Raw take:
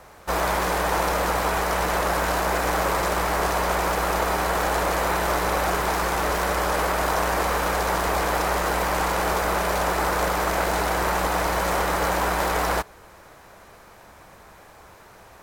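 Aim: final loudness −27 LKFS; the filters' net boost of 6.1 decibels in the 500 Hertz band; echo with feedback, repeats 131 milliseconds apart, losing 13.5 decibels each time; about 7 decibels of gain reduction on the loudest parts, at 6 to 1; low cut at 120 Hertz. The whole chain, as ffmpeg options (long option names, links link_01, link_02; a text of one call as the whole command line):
ffmpeg -i in.wav -af "highpass=120,equalizer=frequency=500:width_type=o:gain=7.5,acompressor=threshold=-24dB:ratio=6,aecho=1:1:131|262:0.211|0.0444" out.wav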